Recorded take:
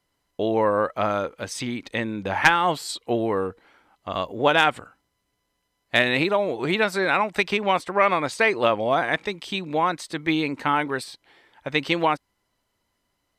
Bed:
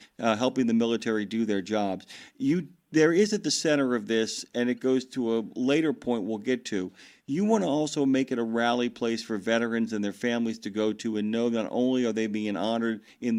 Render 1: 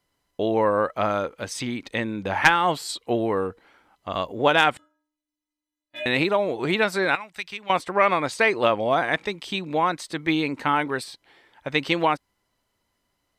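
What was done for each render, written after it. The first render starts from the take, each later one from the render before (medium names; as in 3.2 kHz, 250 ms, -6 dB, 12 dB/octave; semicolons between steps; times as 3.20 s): 4.77–6.06 s: inharmonic resonator 300 Hz, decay 0.5 s, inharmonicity 0.008; 7.15–7.70 s: amplifier tone stack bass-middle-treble 5-5-5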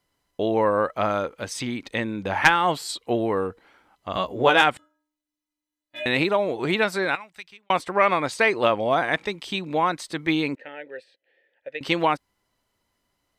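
4.13–4.62 s: doubling 16 ms -4 dB; 6.63–7.70 s: fade out equal-power; 10.55–11.81 s: vowel filter e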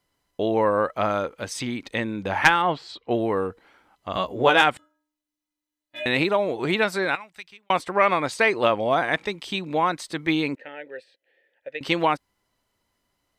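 2.62–3.11 s: distance through air 210 m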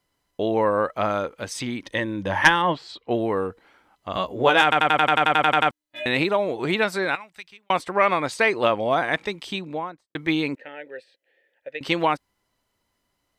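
1.81–2.75 s: rippled EQ curve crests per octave 1.2, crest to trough 8 dB; 4.63 s: stutter in place 0.09 s, 12 plays; 9.44–10.15 s: studio fade out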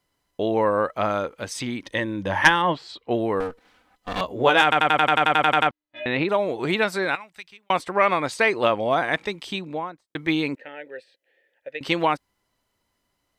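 3.40–4.21 s: comb filter that takes the minimum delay 4 ms; 5.67–6.29 s: distance through air 230 m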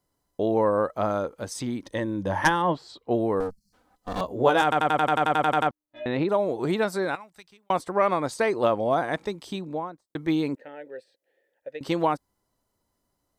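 3.50–3.73 s: spectral selection erased 230–4100 Hz; peaking EQ 2.5 kHz -12.5 dB 1.5 oct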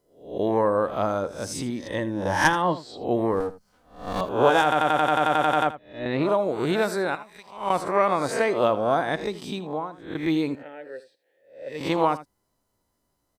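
reverse spectral sustain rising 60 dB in 0.47 s; delay 80 ms -15.5 dB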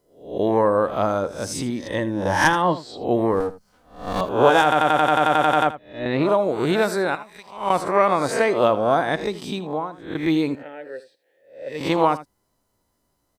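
trim +3.5 dB; peak limiter -2 dBFS, peak gain reduction 2.5 dB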